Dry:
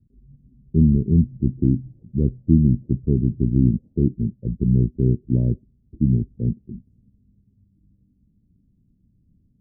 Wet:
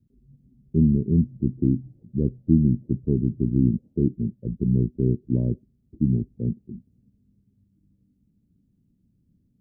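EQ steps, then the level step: low shelf 99 Hz -11 dB; 0.0 dB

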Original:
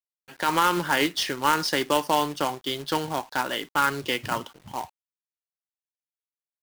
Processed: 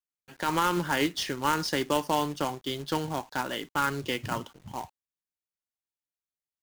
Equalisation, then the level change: low shelf 290 Hz +8.5 dB; bell 6700 Hz +3 dB 0.31 oct; -5.5 dB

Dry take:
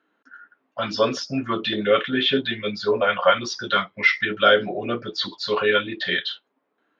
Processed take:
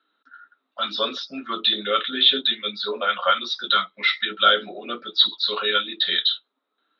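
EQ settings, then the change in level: steep high-pass 190 Hz 36 dB/oct; synth low-pass 3800 Hz, resonance Q 15; bell 1300 Hz +11.5 dB 0.26 oct; -8.0 dB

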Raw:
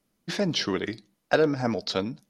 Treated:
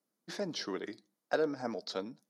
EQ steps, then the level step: HPF 250 Hz 12 dB/oct; bell 2700 Hz -8 dB 0.82 oct; -8.5 dB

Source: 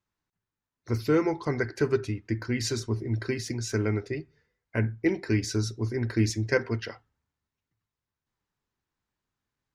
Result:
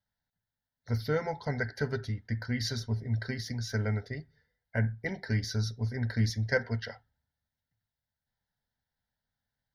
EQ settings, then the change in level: bell 260 Hz +4.5 dB 0.51 oct; fixed phaser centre 1700 Hz, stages 8; 0.0 dB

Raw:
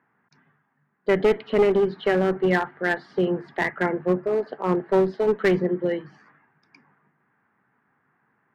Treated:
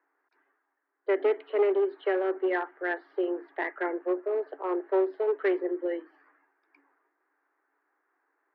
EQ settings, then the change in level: Chebyshev high-pass 280 Hz, order 10; air absorption 390 m; -4.0 dB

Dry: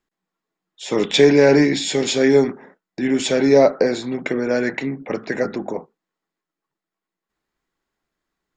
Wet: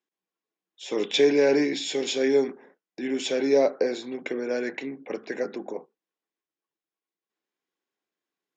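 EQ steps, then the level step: speaker cabinet 330–6600 Hz, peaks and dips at 640 Hz -5 dB, 910 Hz -5 dB, 1300 Hz -8 dB, 1900 Hz -5 dB, 4400 Hz -5 dB; -4.5 dB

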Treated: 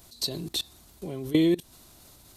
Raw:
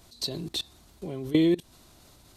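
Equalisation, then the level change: high shelf 9500 Hz +12 dB; 0.0 dB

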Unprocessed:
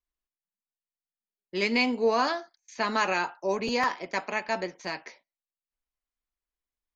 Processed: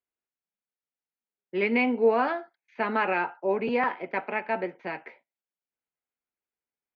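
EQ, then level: speaker cabinet 160–2300 Hz, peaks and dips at 190 Hz -3 dB, 300 Hz -4 dB, 620 Hz -4 dB, 1100 Hz -9 dB, 1800 Hz -5 dB; +4.5 dB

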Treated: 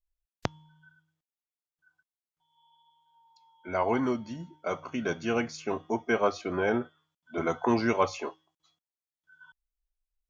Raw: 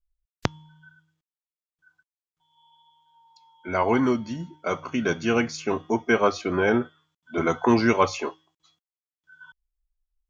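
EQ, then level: bell 670 Hz +4.5 dB 0.85 oct; -7.0 dB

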